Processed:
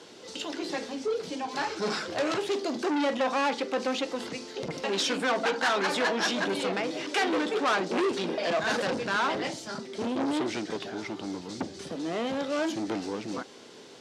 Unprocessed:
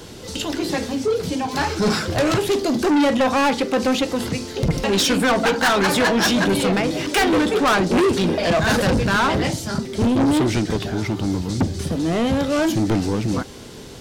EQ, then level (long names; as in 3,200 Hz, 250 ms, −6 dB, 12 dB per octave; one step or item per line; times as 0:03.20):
band-pass filter 310–6,800 Hz
−8.0 dB